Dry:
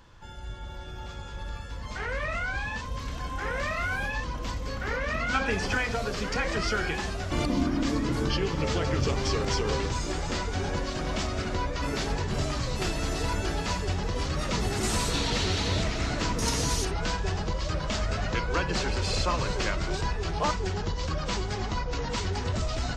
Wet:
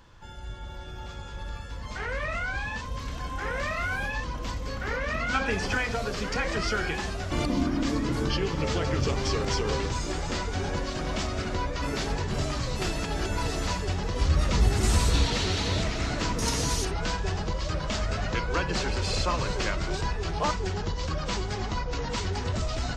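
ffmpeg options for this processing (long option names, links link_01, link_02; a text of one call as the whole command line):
ffmpeg -i in.wav -filter_complex "[0:a]asettb=1/sr,asplit=3[link_01][link_02][link_03];[link_01]atrim=end=14.214[link_04];[link_02]atrim=start=14.21:end=15.26,asetpts=PTS-STARTPTS,afade=type=in:duration=0.004:curve=qsin,afade=type=out:start_time=1.046:duration=0.004:curve=qsin,equalizer=frequency=62:width_type=o:width=1.3:gain=12.5[link_05];[link_03]atrim=start=15.256[link_06];[link_04][link_05]acrossfade=duration=0.004:curve1=hsin:curve2=qsin[link_07];[link_07][link_06]acrossfade=duration=0.004:curve1=qsin:curve2=hsin,asplit=3[link_08][link_09][link_10];[link_08]atrim=end=13.042[link_11];[link_09]atrim=start=13.038:end=13.672,asetpts=PTS-STARTPTS,areverse[link_12];[link_10]atrim=start=13.668[link_13];[link_11][link_12]acrossfade=duration=0.004:curve1=hsin:curve2=hsin[link_14];[link_14][link_13]acrossfade=duration=0.004:curve1=hsin:curve2=hsin" out.wav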